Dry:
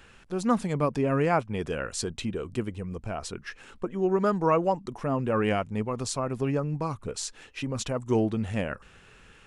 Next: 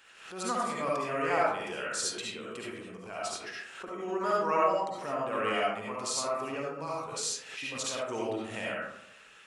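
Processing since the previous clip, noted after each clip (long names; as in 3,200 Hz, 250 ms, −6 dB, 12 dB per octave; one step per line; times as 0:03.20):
high-pass filter 1,400 Hz 6 dB per octave
comb and all-pass reverb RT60 0.8 s, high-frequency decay 0.4×, pre-delay 30 ms, DRR −5 dB
background raised ahead of every attack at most 74 dB per second
level −2.5 dB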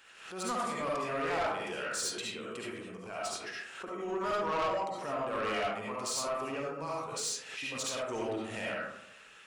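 soft clipping −27.5 dBFS, distortion −11 dB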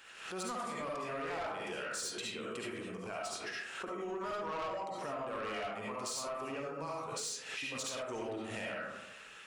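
downward compressor, threshold −40 dBFS, peak gain reduction 10 dB
level +2.5 dB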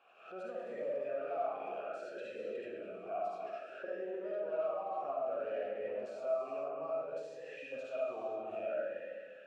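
tilt shelving filter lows +8 dB, about 1,100 Hz
reverb whose tail is shaped and stops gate 480 ms flat, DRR 3.5 dB
formant filter swept between two vowels a-e 0.6 Hz
level +4.5 dB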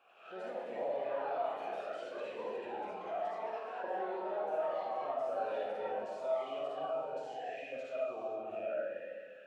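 delay with pitch and tempo change per echo 94 ms, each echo +3 semitones, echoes 3, each echo −6 dB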